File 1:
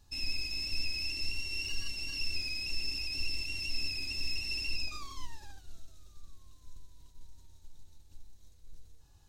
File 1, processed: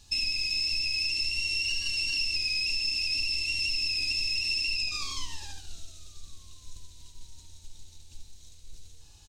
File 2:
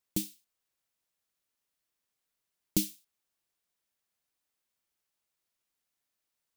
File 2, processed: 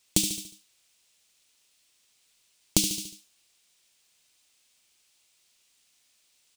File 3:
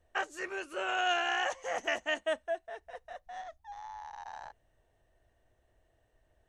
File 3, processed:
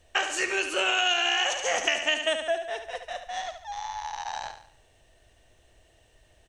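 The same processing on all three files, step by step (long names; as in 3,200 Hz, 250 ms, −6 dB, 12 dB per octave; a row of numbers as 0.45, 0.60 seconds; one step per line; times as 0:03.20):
flat-topped bell 4,600 Hz +10 dB 2.3 octaves
on a send: repeating echo 72 ms, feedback 42%, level −9 dB
on the sum: downward compressor 5 to 1, threshold −31 dBFS
loudness normalisation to −27 LKFS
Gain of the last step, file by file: +4.5, +11.0, +9.0 decibels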